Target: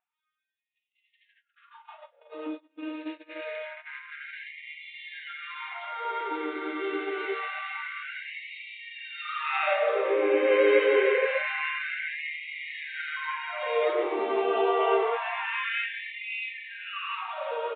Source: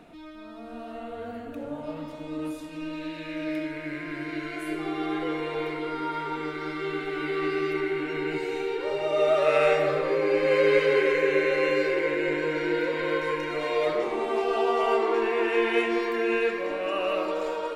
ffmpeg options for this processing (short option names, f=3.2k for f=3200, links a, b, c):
-filter_complex "[0:a]agate=range=-32dB:threshold=-34dB:ratio=16:detection=peak,aresample=8000,aresample=44100,asplit=2[a][b];[b]aecho=0:1:547:0.0944[c];[a][c]amix=inputs=2:normalize=0,afftfilt=real='re*gte(b*sr/1024,240*pow(1900/240,0.5+0.5*sin(2*PI*0.26*pts/sr)))':imag='im*gte(b*sr/1024,240*pow(1900/240,0.5+0.5*sin(2*PI*0.26*pts/sr)))':win_size=1024:overlap=0.75"